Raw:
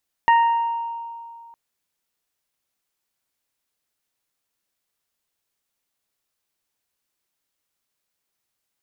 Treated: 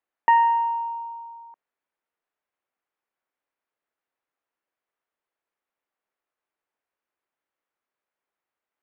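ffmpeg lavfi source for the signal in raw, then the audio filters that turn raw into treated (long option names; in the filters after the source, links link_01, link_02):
-f lavfi -i "aevalsrc='0.282*pow(10,-3*t/2.35)*sin(2*PI*929*t)+0.119*pow(10,-3*t/0.73)*sin(2*PI*1858*t)+0.0299*pow(10,-3*t/1.37)*sin(2*PI*2787*t)':duration=1.26:sample_rate=44100"
-filter_complex "[0:a]acrossover=split=280 2300:gain=0.2 1 0.0708[link_01][link_02][link_03];[link_01][link_02][link_03]amix=inputs=3:normalize=0"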